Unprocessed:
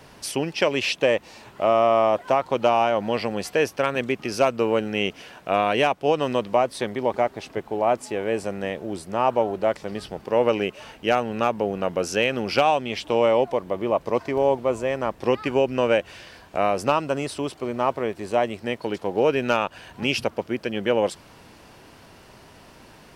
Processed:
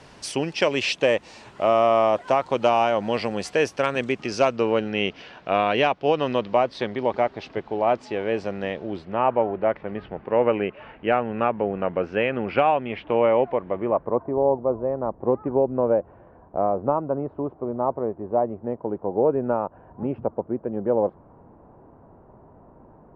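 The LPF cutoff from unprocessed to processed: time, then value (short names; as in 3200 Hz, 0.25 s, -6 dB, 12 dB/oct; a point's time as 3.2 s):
LPF 24 dB/oct
4.04 s 8900 Hz
4.93 s 4900 Hz
8.79 s 4900 Hz
9.31 s 2400 Hz
13.76 s 2400 Hz
14.25 s 1000 Hz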